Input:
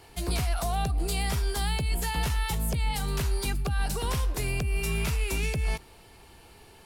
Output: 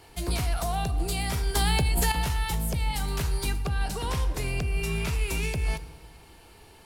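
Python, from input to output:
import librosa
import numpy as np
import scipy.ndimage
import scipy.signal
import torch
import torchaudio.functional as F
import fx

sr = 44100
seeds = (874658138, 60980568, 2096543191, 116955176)

y = fx.high_shelf(x, sr, hz=10000.0, db=-7.5, at=(3.55, 5.14))
y = fx.rev_fdn(y, sr, rt60_s=1.6, lf_ratio=1.0, hf_ratio=0.65, size_ms=19.0, drr_db=11.0)
y = fx.env_flatten(y, sr, amount_pct=100, at=(1.55, 2.12))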